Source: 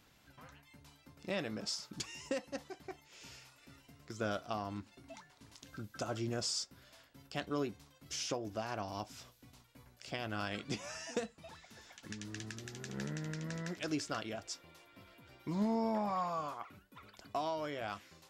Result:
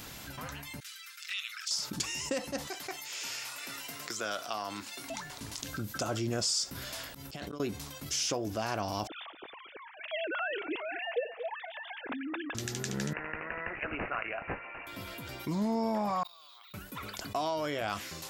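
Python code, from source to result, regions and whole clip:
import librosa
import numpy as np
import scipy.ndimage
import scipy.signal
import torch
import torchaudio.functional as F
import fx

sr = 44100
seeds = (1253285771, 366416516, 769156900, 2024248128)

y = fx.chain(x, sr, fx.steep_highpass(hz=1300.0, slope=72),
    fx.high_shelf(hz=7600.0, db=-5.5),
    fx.env_flanger(rest_ms=8.9, full_db=-43.0), at=(0.8, 1.71))
y = fx.chain(y, sr, fx.highpass(hz=1100.0, slope=6),
    fx.band_squash(depth_pct=40), at=(2.67, 5.1))
y = fx.chain(y, sr, fx.auto_swell(attack_ms=237.0),
    fx.over_compress(threshold_db=-54.0, ratio=-1.0), at=(6.75, 7.6))
y = fx.chain(y, sr, fx.sine_speech(),
    fx.echo_single(ms=231, db=-19.0), at=(9.07, 12.55))
y = fx.chain(y, sr, fx.highpass(hz=780.0, slope=12),
    fx.resample_bad(factor=8, down='none', up='filtered'), at=(13.13, 14.87))
y = fx.chain(y, sr, fx.bandpass_q(hz=3800.0, q=16.0),
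    fx.level_steps(step_db=17),
    fx.resample_bad(factor=2, down='filtered', up='hold'), at=(16.23, 16.74))
y = fx.high_shelf(y, sr, hz=6300.0, db=9.0)
y = fx.env_flatten(y, sr, amount_pct=50)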